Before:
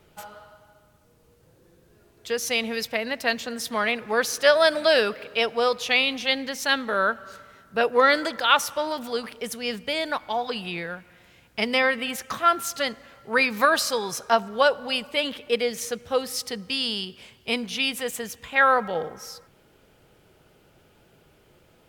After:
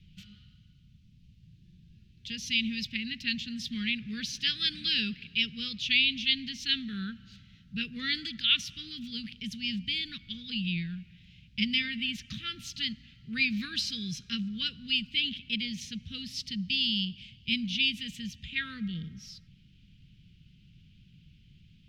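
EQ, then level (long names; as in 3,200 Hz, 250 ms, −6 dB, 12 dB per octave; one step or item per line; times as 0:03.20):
Chebyshev band-stop filter 190–2,800 Hz, order 3
high-frequency loss of the air 240 metres
parametric band 2,600 Hz −2 dB
+6.5 dB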